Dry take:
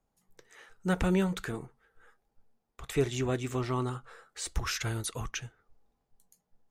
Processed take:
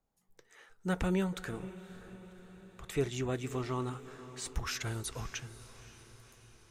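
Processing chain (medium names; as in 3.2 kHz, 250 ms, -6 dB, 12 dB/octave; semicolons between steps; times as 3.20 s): echo that smears into a reverb 542 ms, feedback 57%, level -15 dB; trim -4 dB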